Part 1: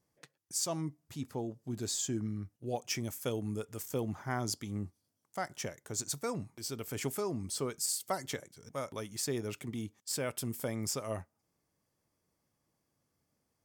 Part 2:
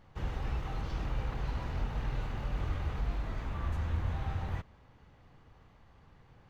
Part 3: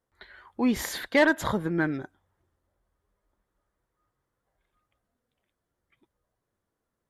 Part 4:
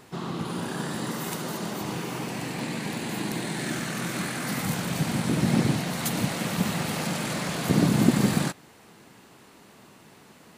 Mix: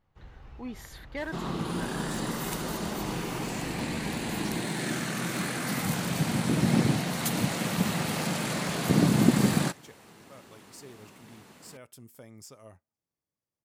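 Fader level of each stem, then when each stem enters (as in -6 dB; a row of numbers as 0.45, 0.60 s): -13.0, -13.5, -15.0, -1.0 dB; 1.55, 0.00, 0.00, 1.20 s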